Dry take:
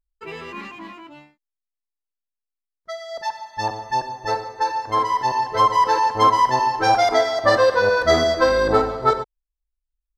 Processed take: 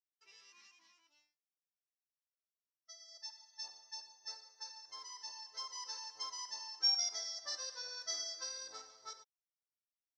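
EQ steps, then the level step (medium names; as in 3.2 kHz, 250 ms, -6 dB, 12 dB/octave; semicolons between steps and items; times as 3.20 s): band-pass filter 5.6 kHz, Q 15; +3.0 dB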